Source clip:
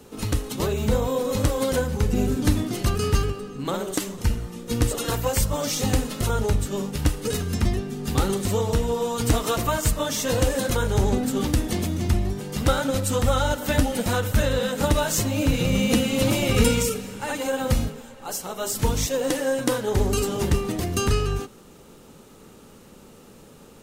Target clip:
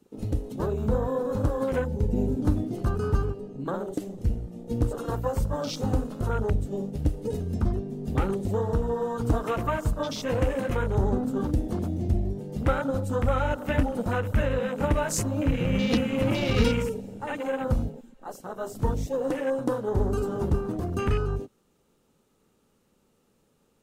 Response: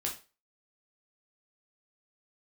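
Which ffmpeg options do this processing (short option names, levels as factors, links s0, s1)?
-af "afwtdn=0.0282,volume=0.708"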